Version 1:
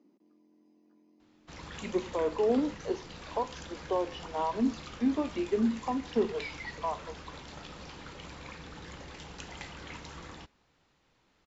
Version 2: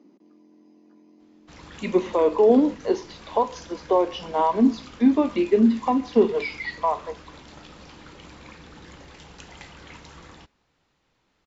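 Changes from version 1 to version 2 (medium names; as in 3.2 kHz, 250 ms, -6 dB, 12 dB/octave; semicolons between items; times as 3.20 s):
speech +9.0 dB; reverb: on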